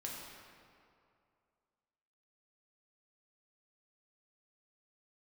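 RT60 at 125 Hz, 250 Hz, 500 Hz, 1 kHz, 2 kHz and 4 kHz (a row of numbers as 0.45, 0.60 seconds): 2.4, 2.3, 2.5, 2.4, 1.9, 1.5 seconds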